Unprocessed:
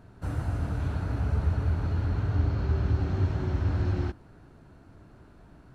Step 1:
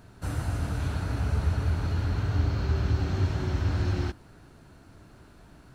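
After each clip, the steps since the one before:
high-shelf EQ 2,400 Hz +11 dB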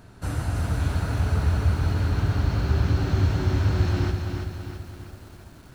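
feedback echo at a low word length 332 ms, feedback 55%, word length 9 bits, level −5.5 dB
level +3 dB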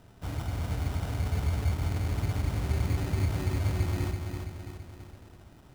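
decimation without filtering 20×
level −6.5 dB

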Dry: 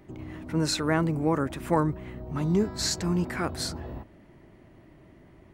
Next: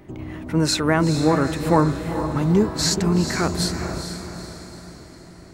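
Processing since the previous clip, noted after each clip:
feedback delay with all-pass diffusion 451 ms, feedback 48%, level −8 dB
level +6.5 dB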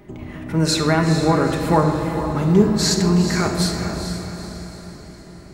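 rectangular room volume 1,500 cubic metres, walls mixed, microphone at 1.3 metres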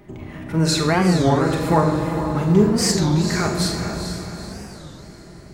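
flutter between parallel walls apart 7.3 metres, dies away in 0.29 s
wow of a warped record 33 1/3 rpm, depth 250 cents
level −1 dB

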